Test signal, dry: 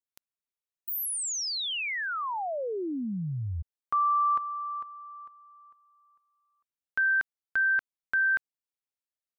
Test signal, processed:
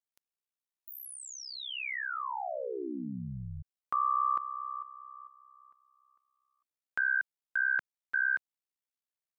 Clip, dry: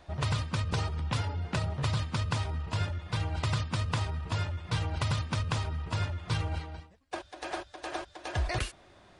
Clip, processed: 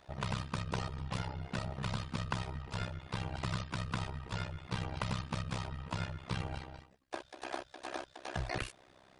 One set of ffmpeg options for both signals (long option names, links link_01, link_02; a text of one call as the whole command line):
ffmpeg -i in.wav -filter_complex "[0:a]tremolo=f=65:d=0.974,acrossover=split=2800[link_01][link_02];[link_02]acompressor=threshold=-43dB:ratio=4:attack=1:release=60[link_03];[link_01][link_03]amix=inputs=2:normalize=0,lowshelf=frequency=110:gain=-7" out.wav